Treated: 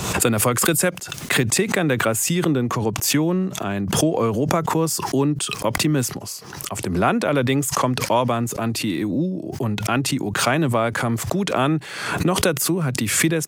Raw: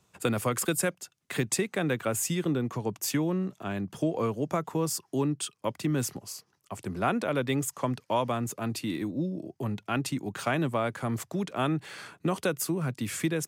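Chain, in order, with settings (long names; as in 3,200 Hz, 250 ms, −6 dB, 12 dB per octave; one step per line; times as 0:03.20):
background raised ahead of every attack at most 48 dB per second
level +8 dB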